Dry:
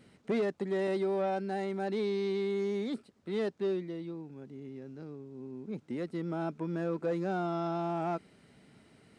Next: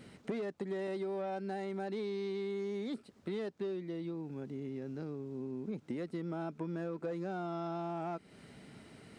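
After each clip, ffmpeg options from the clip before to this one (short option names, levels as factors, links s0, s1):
-af "acompressor=threshold=0.00794:ratio=5,volume=1.88"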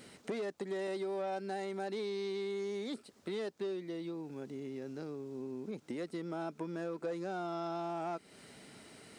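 -af "bass=f=250:g=-8,treble=f=4000:g=7,volume=1.19"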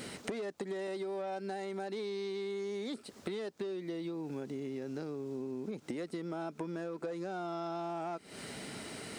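-af "acompressor=threshold=0.00447:ratio=6,volume=3.35"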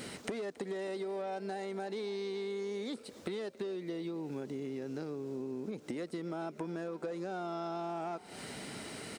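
-filter_complex "[0:a]asplit=6[s0][s1][s2][s3][s4][s5];[s1]adelay=275,afreqshift=45,volume=0.1[s6];[s2]adelay=550,afreqshift=90,volume=0.0582[s7];[s3]adelay=825,afreqshift=135,volume=0.0335[s8];[s4]adelay=1100,afreqshift=180,volume=0.0195[s9];[s5]adelay=1375,afreqshift=225,volume=0.0114[s10];[s0][s6][s7][s8][s9][s10]amix=inputs=6:normalize=0"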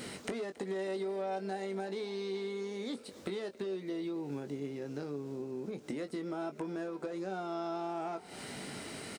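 -filter_complex "[0:a]asplit=2[s0][s1];[s1]adelay=21,volume=0.376[s2];[s0][s2]amix=inputs=2:normalize=0"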